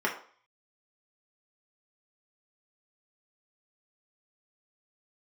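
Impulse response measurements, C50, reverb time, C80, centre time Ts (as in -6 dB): 9.0 dB, 0.50 s, 13.0 dB, 21 ms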